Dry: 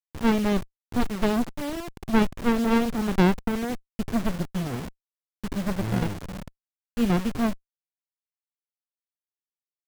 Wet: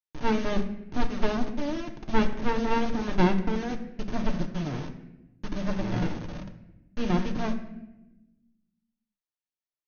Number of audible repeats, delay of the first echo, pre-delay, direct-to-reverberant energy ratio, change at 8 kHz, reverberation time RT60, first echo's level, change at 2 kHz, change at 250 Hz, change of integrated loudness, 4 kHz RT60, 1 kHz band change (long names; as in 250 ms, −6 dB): no echo audible, no echo audible, 3 ms, 3.0 dB, −7.5 dB, 0.95 s, no echo audible, −2.5 dB, −4.5 dB, −3.5 dB, 0.65 s, −1.0 dB